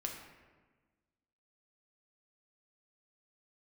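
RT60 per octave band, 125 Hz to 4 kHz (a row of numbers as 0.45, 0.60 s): 1.6, 1.7, 1.4, 1.3, 1.2, 0.85 s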